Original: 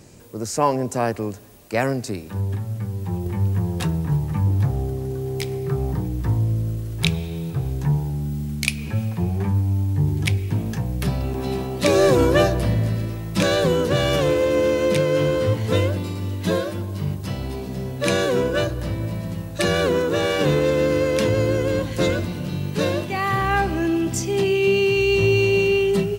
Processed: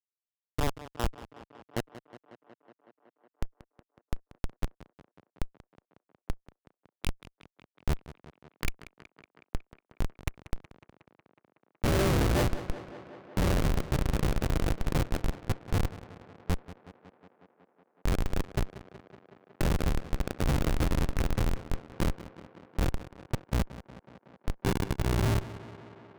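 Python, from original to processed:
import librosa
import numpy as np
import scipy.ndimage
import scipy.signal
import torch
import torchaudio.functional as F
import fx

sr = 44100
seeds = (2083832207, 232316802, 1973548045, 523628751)

y = fx.fade_out_tail(x, sr, length_s=0.97)
y = fx.schmitt(y, sr, flips_db=-12.5)
y = fx.echo_tape(y, sr, ms=184, feedback_pct=83, wet_db=-13.0, lp_hz=4400.0, drive_db=14.0, wow_cents=21)
y = y * librosa.db_to_amplitude(-3.0)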